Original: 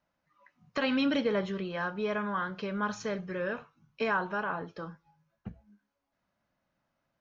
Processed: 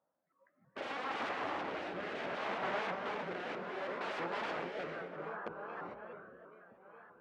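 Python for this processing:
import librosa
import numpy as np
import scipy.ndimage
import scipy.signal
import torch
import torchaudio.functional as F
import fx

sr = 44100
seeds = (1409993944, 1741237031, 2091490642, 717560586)

p1 = fx.env_lowpass(x, sr, base_hz=1400.0, full_db=-24.5)
p2 = p1 + fx.echo_alternate(p1, sr, ms=417, hz=960.0, feedback_pct=66, wet_db=-9.5, dry=0)
p3 = (np.mod(10.0 ** (30.5 / 20.0) * p2 + 1.0, 2.0) - 1.0) / 10.0 ** (30.5 / 20.0)
p4 = fx.bandpass_edges(p3, sr, low_hz=590.0, high_hz=2500.0)
p5 = fx.tilt_eq(p4, sr, slope=-4.0)
p6 = fx.rev_gated(p5, sr, seeds[0], gate_ms=470, shape='rising', drr_db=1.5)
p7 = fx.rotary(p6, sr, hz=0.65)
p8 = fx.rider(p7, sr, range_db=3, speed_s=0.5)
p9 = p7 + (p8 * 10.0 ** (-2.5 / 20.0))
p10 = fx.vibrato_shape(p9, sr, shape='saw_up', rate_hz=3.1, depth_cents=160.0)
y = p10 * 10.0 ** (-2.0 / 20.0)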